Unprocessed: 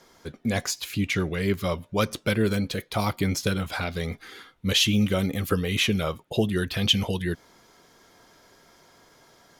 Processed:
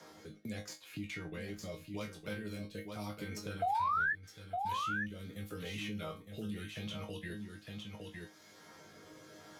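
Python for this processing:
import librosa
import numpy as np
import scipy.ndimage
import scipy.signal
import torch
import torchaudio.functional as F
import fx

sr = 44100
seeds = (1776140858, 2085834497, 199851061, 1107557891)

y = fx.tracing_dist(x, sr, depth_ms=0.025)
y = scipy.signal.sosfilt(scipy.signal.butter(2, 75.0, 'highpass', fs=sr, output='sos'), y)
y = fx.level_steps(y, sr, step_db=15)
y = fx.rotary(y, sr, hz=0.8)
y = fx.resonator_bank(y, sr, root=44, chord='fifth', decay_s=0.22)
y = fx.spec_paint(y, sr, seeds[0], shape='rise', start_s=3.62, length_s=0.51, low_hz=680.0, high_hz=1800.0, level_db=-22.0)
y = fx.doubler(y, sr, ms=23.0, db=-8)
y = y + 10.0 ** (-9.0 / 20.0) * np.pad(y, (int(910 * sr / 1000.0), 0))[:len(y)]
y = fx.band_squash(y, sr, depth_pct=70)
y = F.gain(torch.from_numpy(y), -1.5).numpy()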